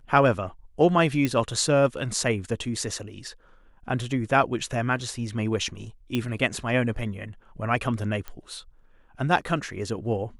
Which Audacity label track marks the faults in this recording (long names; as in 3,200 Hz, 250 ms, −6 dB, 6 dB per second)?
1.250000	1.250000	click −12 dBFS
6.150000	6.150000	click −13 dBFS
8.280000	8.280000	click −21 dBFS